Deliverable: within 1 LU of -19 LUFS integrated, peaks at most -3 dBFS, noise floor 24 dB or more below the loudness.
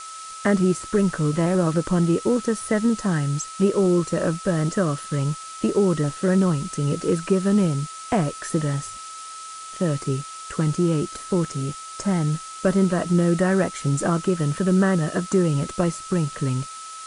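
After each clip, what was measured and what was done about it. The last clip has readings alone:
steady tone 1300 Hz; tone level -36 dBFS; noise floor -37 dBFS; noise floor target -47 dBFS; loudness -22.5 LUFS; peak -7.5 dBFS; loudness target -19.0 LUFS
-> notch 1300 Hz, Q 30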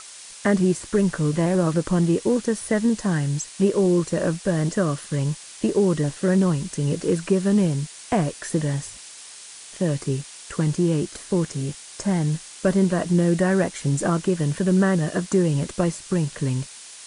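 steady tone none; noise floor -42 dBFS; noise floor target -47 dBFS
-> noise print and reduce 6 dB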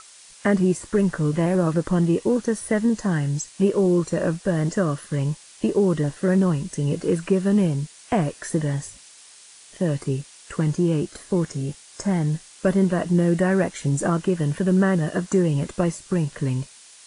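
noise floor -48 dBFS; loudness -23.0 LUFS; peak -8.0 dBFS; loudness target -19.0 LUFS
-> gain +4 dB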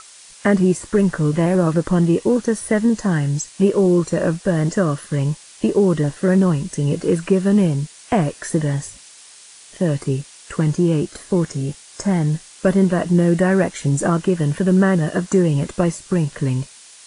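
loudness -19.0 LUFS; peak -4.0 dBFS; noise floor -44 dBFS

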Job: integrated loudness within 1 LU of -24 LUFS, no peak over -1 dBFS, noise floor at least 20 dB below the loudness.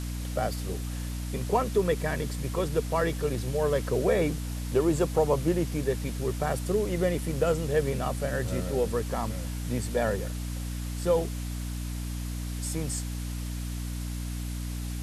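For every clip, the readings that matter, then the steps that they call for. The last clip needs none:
hum 60 Hz; harmonics up to 300 Hz; hum level -31 dBFS; noise floor -34 dBFS; noise floor target -50 dBFS; loudness -29.5 LUFS; peak -12.0 dBFS; loudness target -24.0 LUFS
-> de-hum 60 Hz, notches 5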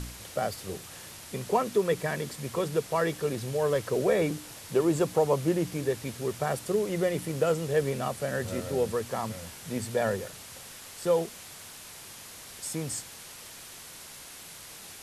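hum none; noise floor -46 dBFS; noise floor target -50 dBFS
-> denoiser 6 dB, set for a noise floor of -46 dBFS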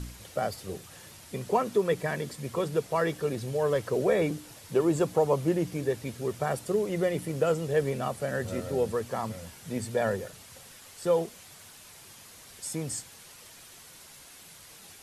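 noise floor -51 dBFS; loudness -29.5 LUFS; peak -12.5 dBFS; loudness target -24.0 LUFS
-> gain +5.5 dB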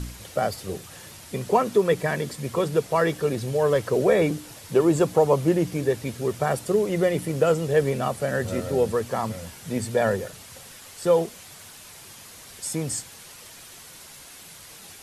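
loudness -24.0 LUFS; peak -7.0 dBFS; noise floor -45 dBFS

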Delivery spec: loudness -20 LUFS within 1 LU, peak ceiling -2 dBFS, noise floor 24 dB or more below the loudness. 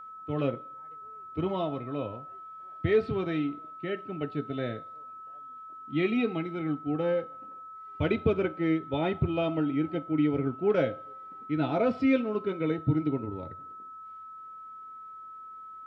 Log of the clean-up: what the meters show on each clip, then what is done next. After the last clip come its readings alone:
steady tone 1300 Hz; tone level -42 dBFS; loudness -30.0 LUFS; peak -12.5 dBFS; loudness target -20.0 LUFS
-> notch 1300 Hz, Q 30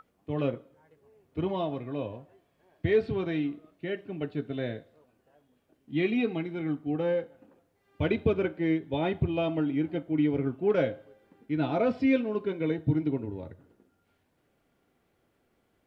steady tone none; loudness -30.0 LUFS; peak -12.5 dBFS; loudness target -20.0 LUFS
-> gain +10 dB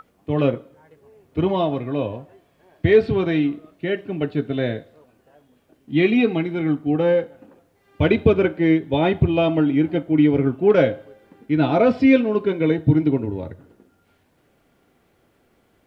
loudness -20.0 LUFS; peak -2.5 dBFS; noise floor -62 dBFS

